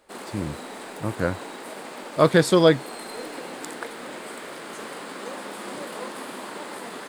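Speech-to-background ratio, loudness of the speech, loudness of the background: 15.0 dB, -21.0 LUFS, -36.0 LUFS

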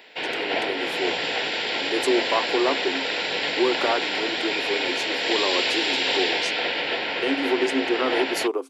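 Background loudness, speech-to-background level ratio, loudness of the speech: -24.0 LUFS, -3.5 dB, -27.5 LUFS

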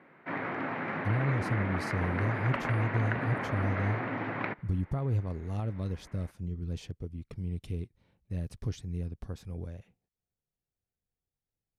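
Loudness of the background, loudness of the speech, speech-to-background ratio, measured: -34.5 LUFS, -34.5 LUFS, 0.0 dB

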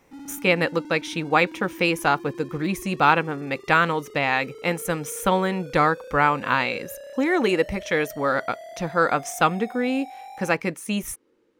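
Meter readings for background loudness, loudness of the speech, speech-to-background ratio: -41.0 LUFS, -23.5 LUFS, 17.5 dB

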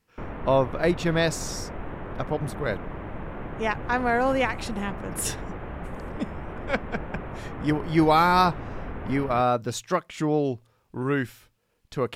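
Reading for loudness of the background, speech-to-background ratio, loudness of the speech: -37.0 LUFS, 11.0 dB, -26.0 LUFS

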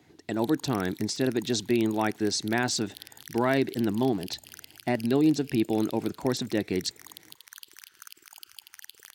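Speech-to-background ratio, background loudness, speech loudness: 18.5 dB, -46.5 LUFS, -28.0 LUFS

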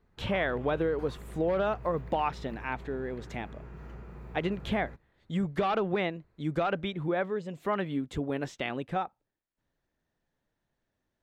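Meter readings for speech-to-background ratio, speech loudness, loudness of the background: 14.5 dB, -32.0 LUFS, -46.5 LUFS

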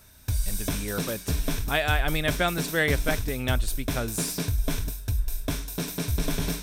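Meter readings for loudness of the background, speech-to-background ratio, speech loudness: -30.5 LUFS, 1.5 dB, -29.0 LUFS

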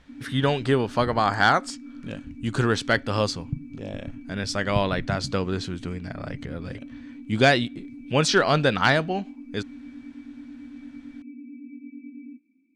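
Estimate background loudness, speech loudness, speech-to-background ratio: -42.0 LUFS, -24.0 LUFS, 18.0 dB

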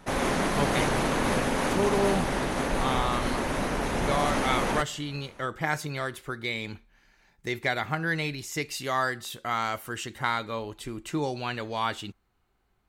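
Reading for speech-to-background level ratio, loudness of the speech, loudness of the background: -3.5 dB, -31.0 LUFS, -27.5 LUFS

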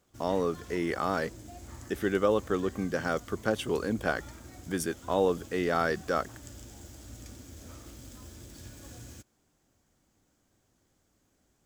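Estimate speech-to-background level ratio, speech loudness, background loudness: 17.0 dB, -30.5 LUFS, -47.5 LUFS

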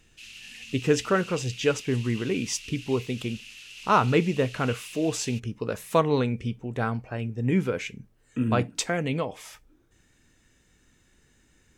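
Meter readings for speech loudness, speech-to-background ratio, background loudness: -27.0 LUFS, 15.0 dB, -42.0 LUFS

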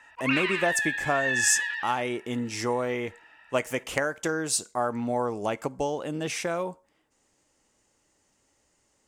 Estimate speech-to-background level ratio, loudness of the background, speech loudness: -1.0 dB, -27.5 LUFS, -28.5 LUFS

